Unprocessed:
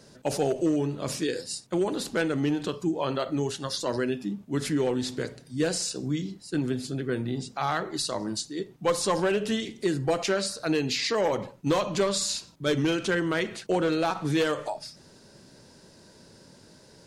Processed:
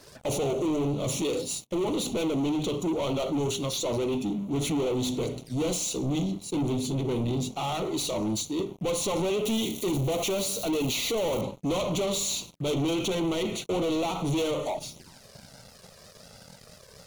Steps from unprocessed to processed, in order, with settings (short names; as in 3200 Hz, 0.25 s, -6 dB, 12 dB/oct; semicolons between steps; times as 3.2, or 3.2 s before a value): 9.45–11.41 switching spikes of -29 dBFS; notches 50/100/150/200/250/300/350/400 Hz; sample leveller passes 5; envelope flanger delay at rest 3.8 ms, full sweep at -25 dBFS; gain -8 dB